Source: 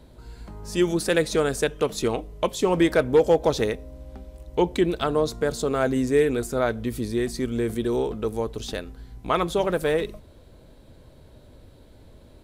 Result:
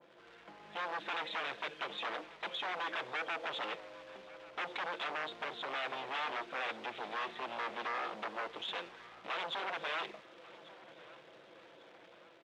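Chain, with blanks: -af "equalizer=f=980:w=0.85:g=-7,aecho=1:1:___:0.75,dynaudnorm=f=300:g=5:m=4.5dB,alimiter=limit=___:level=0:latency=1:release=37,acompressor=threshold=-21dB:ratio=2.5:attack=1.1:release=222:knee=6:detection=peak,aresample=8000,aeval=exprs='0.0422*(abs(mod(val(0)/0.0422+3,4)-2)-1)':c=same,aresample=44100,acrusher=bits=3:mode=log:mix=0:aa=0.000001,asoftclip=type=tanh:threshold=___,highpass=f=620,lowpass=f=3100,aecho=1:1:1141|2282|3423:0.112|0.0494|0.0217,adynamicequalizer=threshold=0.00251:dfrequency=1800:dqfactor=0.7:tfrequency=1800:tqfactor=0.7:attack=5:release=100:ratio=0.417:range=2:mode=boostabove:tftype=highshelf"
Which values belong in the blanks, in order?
5.9, -8.5dB, -32.5dB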